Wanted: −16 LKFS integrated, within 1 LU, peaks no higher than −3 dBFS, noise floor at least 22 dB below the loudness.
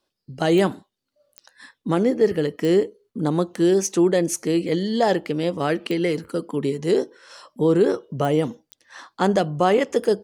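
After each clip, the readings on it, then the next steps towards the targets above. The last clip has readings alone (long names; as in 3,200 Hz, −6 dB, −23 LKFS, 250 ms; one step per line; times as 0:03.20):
number of clicks 6; integrated loudness −21.5 LKFS; sample peak −6.0 dBFS; target loudness −16.0 LKFS
→ click removal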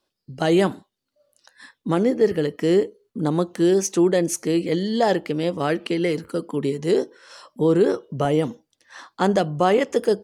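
number of clicks 0; integrated loudness −21.5 LKFS; sample peak −6.0 dBFS; target loudness −16.0 LKFS
→ level +5.5 dB
brickwall limiter −3 dBFS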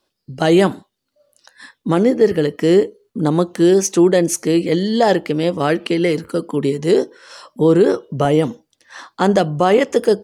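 integrated loudness −16.5 LKFS; sample peak −3.0 dBFS; background noise floor −75 dBFS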